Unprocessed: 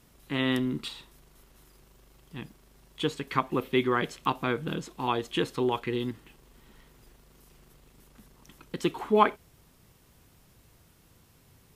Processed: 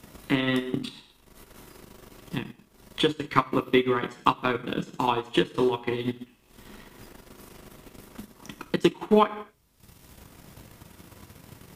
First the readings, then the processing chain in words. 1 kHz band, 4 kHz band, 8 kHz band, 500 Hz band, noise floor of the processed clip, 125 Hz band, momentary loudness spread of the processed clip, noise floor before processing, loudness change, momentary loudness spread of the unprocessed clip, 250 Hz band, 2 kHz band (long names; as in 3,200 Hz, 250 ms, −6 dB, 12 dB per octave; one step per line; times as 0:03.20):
+2.5 dB, +3.5 dB, +1.5 dB, +3.5 dB, −60 dBFS, +2.0 dB, 20 LU, −61 dBFS, +3.0 dB, 18 LU, +4.0 dB, +2.5 dB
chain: reverb whose tail is shaped and stops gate 260 ms falling, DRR 2 dB
transient designer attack +10 dB, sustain −11 dB
multiband upward and downward compressor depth 40%
level −1.5 dB